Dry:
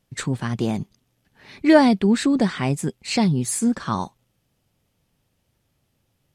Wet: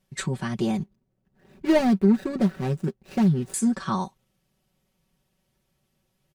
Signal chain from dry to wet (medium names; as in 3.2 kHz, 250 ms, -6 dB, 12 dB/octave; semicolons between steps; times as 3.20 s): 0.77–3.54 s: median filter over 41 samples; comb 5.3 ms, depth 76%; trim -4 dB